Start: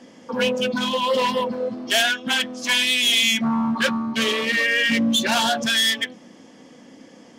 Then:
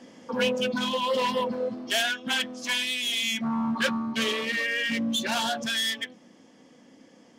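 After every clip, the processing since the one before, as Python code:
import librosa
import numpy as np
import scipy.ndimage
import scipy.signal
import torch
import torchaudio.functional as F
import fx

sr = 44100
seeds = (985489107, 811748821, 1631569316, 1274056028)

y = fx.rider(x, sr, range_db=4, speed_s=0.5)
y = F.gain(torch.from_numpy(y), -6.5).numpy()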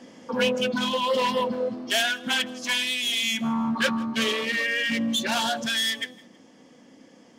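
y = fx.echo_feedback(x, sr, ms=161, feedback_pct=36, wet_db=-23.0)
y = F.gain(torch.from_numpy(y), 2.0).numpy()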